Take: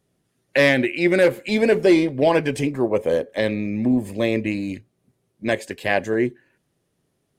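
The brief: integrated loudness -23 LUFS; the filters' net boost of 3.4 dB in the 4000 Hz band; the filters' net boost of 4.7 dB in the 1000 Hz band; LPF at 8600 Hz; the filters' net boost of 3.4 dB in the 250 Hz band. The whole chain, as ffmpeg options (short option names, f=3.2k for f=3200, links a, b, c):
-af "lowpass=8.6k,equalizer=f=250:t=o:g=4,equalizer=f=1k:t=o:g=6,equalizer=f=4k:t=o:g=4,volume=-5dB"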